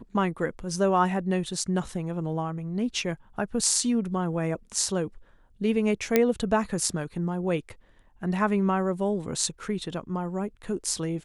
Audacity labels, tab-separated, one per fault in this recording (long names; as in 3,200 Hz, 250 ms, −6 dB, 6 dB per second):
6.160000	6.160000	click −6 dBFS